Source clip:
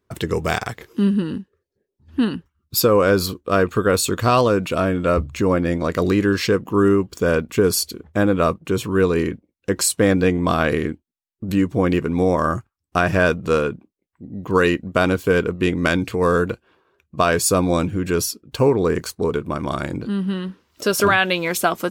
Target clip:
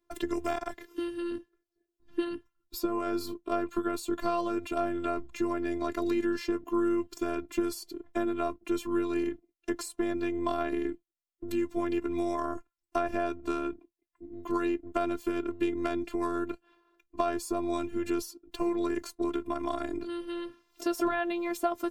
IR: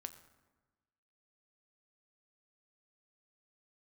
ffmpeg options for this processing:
-filter_complex "[0:a]acrossover=split=89|1200[a][b][c];[a]acompressor=threshold=-41dB:ratio=4[d];[b]acompressor=threshold=-20dB:ratio=4[e];[c]acompressor=threshold=-37dB:ratio=4[f];[d][e][f]amix=inputs=3:normalize=0,afftfilt=real='hypot(re,im)*cos(PI*b)':imag='0':win_size=512:overlap=0.75,volume=-2.5dB"

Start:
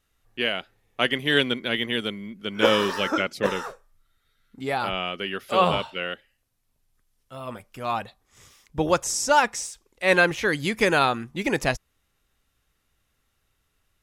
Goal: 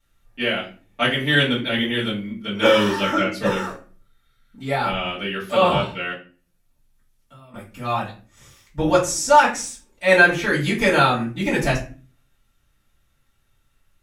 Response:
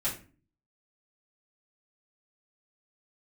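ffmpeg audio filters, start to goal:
-filter_complex "[0:a]asettb=1/sr,asplit=3[a][b][c];[a]atrim=end=6.124[d];[b]atrim=start=6.12:end=7.54,asetpts=PTS-STARTPTS,afade=t=in:d=0.004:c=qsin,afade=t=out:st=1.416:d=0.004:c=qsin,acompressor=threshold=-48dB:ratio=20[e];[c]atrim=start=7.536[f];[d][e]acrossfade=d=0.004:c1=hsin:c2=qsin[g];[g][f]acrossfade=d=0.004:c1=qsin:c2=hsin[h];[1:a]atrim=start_sample=2205[i];[h][i]afir=irnorm=-1:irlink=0,volume=-2.5dB"

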